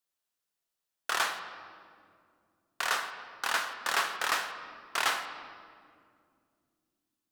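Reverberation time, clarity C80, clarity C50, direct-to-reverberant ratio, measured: 2.3 s, 10.0 dB, 8.5 dB, 7.0 dB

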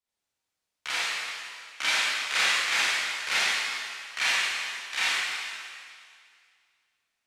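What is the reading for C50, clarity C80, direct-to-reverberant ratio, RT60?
-5.5 dB, -2.5 dB, -10.0 dB, 2.1 s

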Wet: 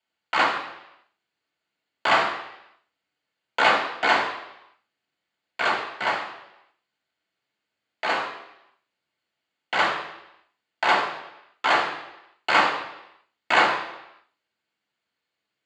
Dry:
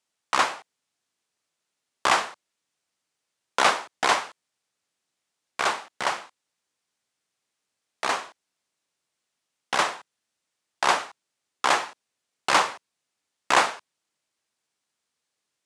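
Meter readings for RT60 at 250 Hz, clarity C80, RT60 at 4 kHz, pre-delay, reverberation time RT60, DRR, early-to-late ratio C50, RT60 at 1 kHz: 0.85 s, 8.5 dB, 0.90 s, 3 ms, 0.85 s, -3.0 dB, 6.5 dB, 0.85 s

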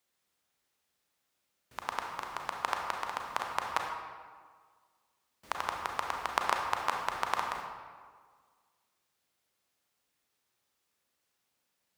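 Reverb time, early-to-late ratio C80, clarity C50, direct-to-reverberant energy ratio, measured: 1.7 s, 4.5 dB, 3.0 dB, 1.0 dB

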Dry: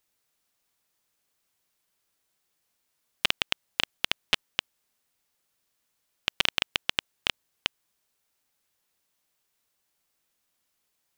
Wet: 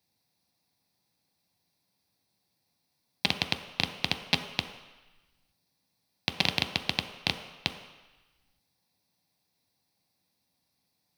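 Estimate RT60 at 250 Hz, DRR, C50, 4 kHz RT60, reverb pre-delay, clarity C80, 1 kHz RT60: 1.0 s, 5.5 dB, 9.5 dB, 1.1 s, 3 ms, 10.5 dB, 1.2 s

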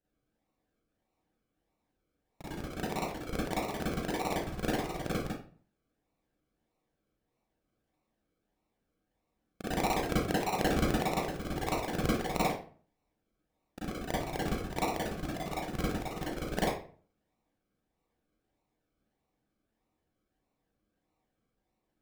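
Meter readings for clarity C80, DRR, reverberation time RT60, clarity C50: 6.5 dB, -8.5 dB, 0.45 s, 0.5 dB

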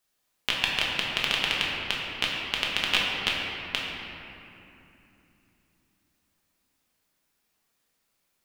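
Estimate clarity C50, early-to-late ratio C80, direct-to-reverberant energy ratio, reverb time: -1.0 dB, 0.5 dB, -4.5 dB, 2.9 s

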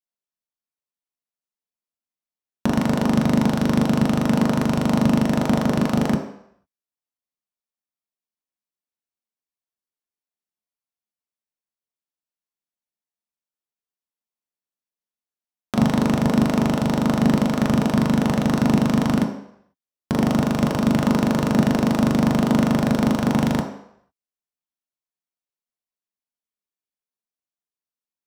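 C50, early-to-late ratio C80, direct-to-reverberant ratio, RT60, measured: 7.0 dB, 10.0 dB, 1.0 dB, 0.70 s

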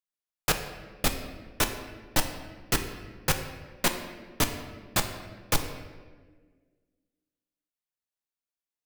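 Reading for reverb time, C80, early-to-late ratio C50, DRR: 1.5 s, 9.5 dB, 8.0 dB, 5.0 dB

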